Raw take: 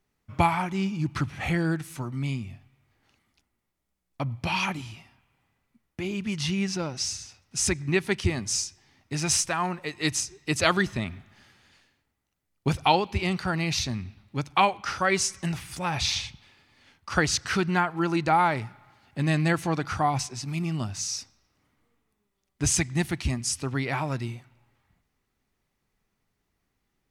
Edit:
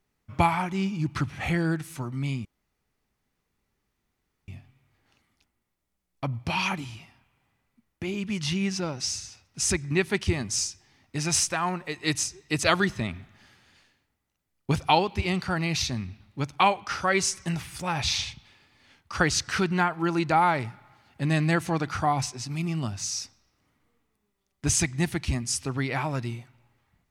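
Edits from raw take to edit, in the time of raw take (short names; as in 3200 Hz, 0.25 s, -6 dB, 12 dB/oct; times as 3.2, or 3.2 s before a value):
2.45 insert room tone 2.03 s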